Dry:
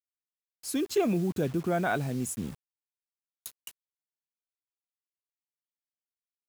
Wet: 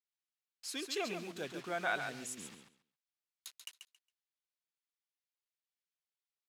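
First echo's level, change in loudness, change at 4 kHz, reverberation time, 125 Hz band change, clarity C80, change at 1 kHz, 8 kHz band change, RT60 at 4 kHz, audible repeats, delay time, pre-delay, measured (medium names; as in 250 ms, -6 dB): -7.0 dB, -10.0 dB, +0.5 dB, no reverb, -21.0 dB, no reverb, -6.5 dB, -6.0 dB, no reverb, 2, 137 ms, no reverb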